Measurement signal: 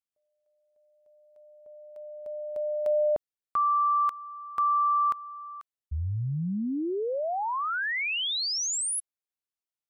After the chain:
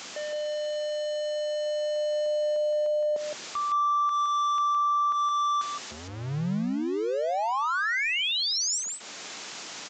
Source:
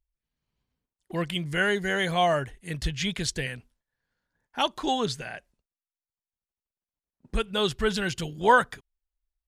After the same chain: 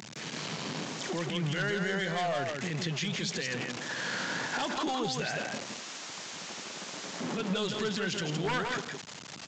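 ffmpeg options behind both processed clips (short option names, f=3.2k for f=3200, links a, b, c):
-filter_complex "[0:a]aeval=exprs='val(0)+0.5*0.0188*sgn(val(0))':c=same,acompressor=threshold=-41dB:ratio=1.5:attack=17:release=174:detection=peak,highpass=f=160:w=0.5412,highpass=f=160:w=1.3066,aresample=16000,aeval=exprs='0.0596*(abs(mod(val(0)/0.0596+3,4)-2)-1)':c=same,aresample=44100,alimiter=level_in=9.5dB:limit=-24dB:level=0:latency=1:release=38,volume=-9.5dB,asplit=2[a][b];[b]aecho=0:1:165:0.596[c];[a][c]amix=inputs=2:normalize=0,volume=8dB"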